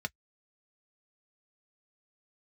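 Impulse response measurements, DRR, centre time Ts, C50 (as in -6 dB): 5.5 dB, 2 ms, 48.0 dB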